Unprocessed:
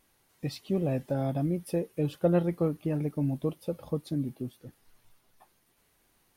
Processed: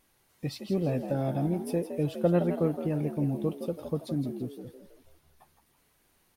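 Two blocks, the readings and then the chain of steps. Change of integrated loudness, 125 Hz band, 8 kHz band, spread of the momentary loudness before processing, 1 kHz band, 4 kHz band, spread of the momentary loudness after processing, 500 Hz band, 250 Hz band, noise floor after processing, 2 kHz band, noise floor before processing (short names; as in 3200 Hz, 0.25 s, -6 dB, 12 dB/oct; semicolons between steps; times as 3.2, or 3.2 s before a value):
+0.5 dB, 0.0 dB, n/a, 12 LU, +1.5 dB, +0.5 dB, 12 LU, +1.0 dB, +0.5 dB, -69 dBFS, +0.5 dB, -70 dBFS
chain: frequency-shifting echo 0.164 s, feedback 41%, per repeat +69 Hz, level -9.5 dB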